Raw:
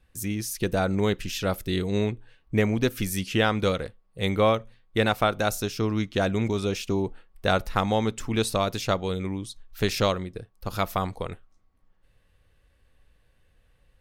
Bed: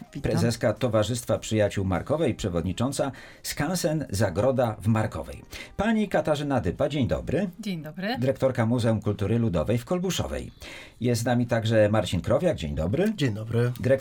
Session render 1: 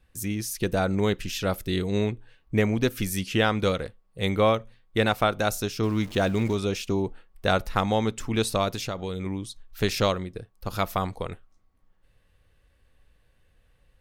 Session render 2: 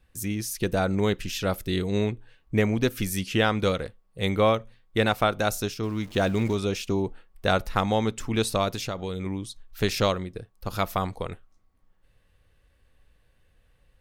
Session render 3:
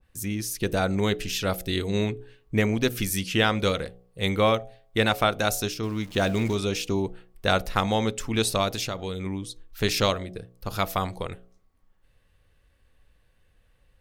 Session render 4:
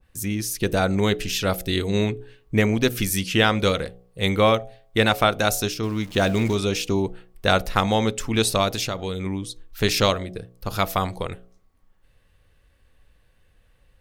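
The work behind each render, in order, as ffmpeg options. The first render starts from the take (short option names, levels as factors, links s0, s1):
-filter_complex "[0:a]asettb=1/sr,asplit=3[s0][s1][s2];[s0]atrim=end=5.834[s3];[s1]atrim=start=5.83:end=6.55,asetpts=PTS-STARTPTS,afade=t=in:d=0.004:c=qsin,afade=t=out:st=0.716:d=0.004:c=qsin,aeval=exprs='val(0)+0.5*0.0126*sgn(val(0))':c=same[s4];[s2]atrim=start=6.546[s5];[s3][s4]acrossfade=d=0.004:c1=hsin:c2=qsin[s6];[s6][s5]acrossfade=d=0.004:c1=qsin:c2=hsin,asettb=1/sr,asplit=3[s7][s8][s9];[s7]atrim=end=8.744[s10];[s8]atrim=start=8.74:end=9.26,asetpts=PTS-STARTPTS,afade=t=in:d=0.004:c=qsin,afade=t=out:st=0.516:d=0.004:c=qsin,acompressor=threshold=0.0501:ratio=5:attack=3.2:release=140:knee=1:detection=peak[s11];[s9]atrim=start=9.256[s12];[s10][s11]acrossfade=d=0.004:c1=hsin:c2=qsin[s13];[s13][s12]acrossfade=d=0.004:c1=qsin:c2=hsin"
-filter_complex "[0:a]asplit=3[s0][s1][s2];[s0]atrim=end=5.742[s3];[s1]atrim=start=5.738:end=6.152,asetpts=PTS-STARTPTS,volume=0.631[s4];[s2]atrim=start=6.148[s5];[s3][s4]acrossfade=d=0.004:c1=hsin:c2=hsin[s6];[s6][s5]acrossfade=d=0.004:c1=hsin:c2=hsin"
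-af "bandreject=f=60.71:t=h:w=4,bandreject=f=121.42:t=h:w=4,bandreject=f=182.13:t=h:w=4,bandreject=f=242.84:t=h:w=4,bandreject=f=303.55:t=h:w=4,bandreject=f=364.26:t=h:w=4,bandreject=f=424.97:t=h:w=4,bandreject=f=485.68:t=h:w=4,bandreject=f=546.39:t=h:w=4,bandreject=f=607.1:t=h:w=4,bandreject=f=667.81:t=h:w=4,bandreject=f=728.52:t=h:w=4,bandreject=f=789.23:t=h:w=4,adynamicequalizer=threshold=0.0141:dfrequency=1800:dqfactor=0.7:tfrequency=1800:tqfactor=0.7:attack=5:release=100:ratio=0.375:range=2:mode=boostabove:tftype=highshelf"
-af "volume=1.5"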